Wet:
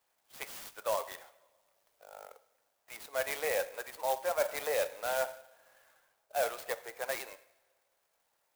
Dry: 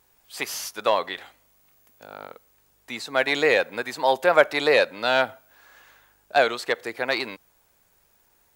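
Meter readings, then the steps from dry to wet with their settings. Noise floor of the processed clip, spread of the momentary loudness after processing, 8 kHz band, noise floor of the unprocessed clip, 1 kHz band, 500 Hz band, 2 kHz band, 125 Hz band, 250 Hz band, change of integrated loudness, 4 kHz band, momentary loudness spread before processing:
−78 dBFS, 18 LU, −4.5 dB, −64 dBFS, −12.5 dB, −11.5 dB, −15.5 dB, below −15 dB, −22.5 dB, −12.0 dB, −16.0 dB, 17 LU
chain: spectral magnitudes quantised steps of 15 dB
four-pole ladder high-pass 470 Hz, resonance 40%
coupled-rooms reverb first 0.73 s, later 2 s, from −18 dB, DRR 12 dB
reversed playback
downward compressor, threshold −22 dBFS, peak gain reduction 7.5 dB
reversed playback
converter with an unsteady clock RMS 0.053 ms
level −4.5 dB

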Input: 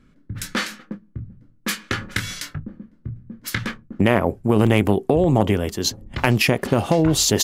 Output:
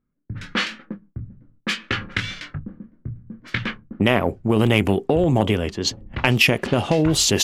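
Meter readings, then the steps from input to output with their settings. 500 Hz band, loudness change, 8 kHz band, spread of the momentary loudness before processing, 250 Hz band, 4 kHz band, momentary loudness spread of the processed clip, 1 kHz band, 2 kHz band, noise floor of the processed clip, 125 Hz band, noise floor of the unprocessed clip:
−1.0 dB, 0.0 dB, −1.5 dB, 19 LU, −1.0 dB, +2.5 dB, 20 LU, −1.5 dB, +2.0 dB, −66 dBFS, −1.0 dB, −55 dBFS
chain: dynamic equaliser 2,800 Hz, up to +7 dB, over −39 dBFS, Q 1.7
noise gate with hold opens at −44 dBFS
tape wow and flutter 66 cents
in parallel at −10 dB: soft clipping −16.5 dBFS, distortion −7 dB
on the sum: low-pass that shuts in the quiet parts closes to 1,600 Hz, open at −11 dBFS
level −2.5 dB

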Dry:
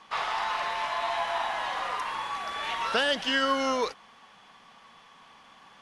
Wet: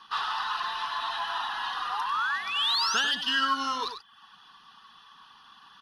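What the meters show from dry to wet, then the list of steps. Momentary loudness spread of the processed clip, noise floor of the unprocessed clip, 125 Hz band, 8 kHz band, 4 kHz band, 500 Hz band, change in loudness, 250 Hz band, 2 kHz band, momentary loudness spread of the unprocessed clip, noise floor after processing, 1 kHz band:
8 LU, −55 dBFS, can't be measured, +4.5 dB, +4.5 dB, −15.0 dB, +1.0 dB, −7.0 dB, +0.5 dB, 7 LU, −56 dBFS, 0.0 dB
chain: sound drawn into the spectrogram rise, 0:01.90–0:03.00, 730–6,900 Hz −31 dBFS
reverb reduction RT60 0.58 s
phaser with its sweep stopped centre 2,200 Hz, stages 6
in parallel at −7 dB: soft clipping −31 dBFS, distortion −11 dB
on the sum: tilt shelving filter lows −5 dB, about 650 Hz
on a send: single-tap delay 96 ms −8.5 dB
on the sum: level −2.5 dB

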